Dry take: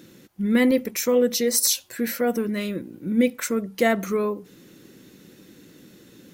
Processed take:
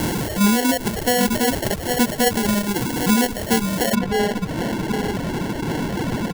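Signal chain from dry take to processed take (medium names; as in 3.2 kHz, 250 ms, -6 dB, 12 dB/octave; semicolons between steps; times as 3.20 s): one-bit delta coder 64 kbps, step -22.5 dBFS; peak limiter -17 dBFS, peak gain reduction 9 dB; peaking EQ 120 Hz +6.5 dB 2.1 oct; delay 798 ms -7 dB; sample-and-hold 36×; treble shelf 5.9 kHz +9.5 dB, from 3.95 s -4 dB; reverb removal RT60 1.1 s; whistle 450 Hz -46 dBFS; trim +4.5 dB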